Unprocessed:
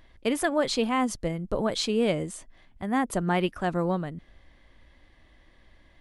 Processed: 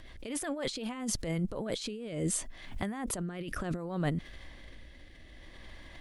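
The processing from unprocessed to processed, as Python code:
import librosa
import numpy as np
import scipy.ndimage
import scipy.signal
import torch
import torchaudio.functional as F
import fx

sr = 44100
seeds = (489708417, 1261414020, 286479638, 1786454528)

y = fx.high_shelf(x, sr, hz=2200.0, db=5.5)
y = fx.over_compress(y, sr, threshold_db=-34.0, ratio=-1.0)
y = fx.rotary_switch(y, sr, hz=8.0, then_hz=0.65, switch_at_s=0.31)
y = fx.pre_swell(y, sr, db_per_s=76.0)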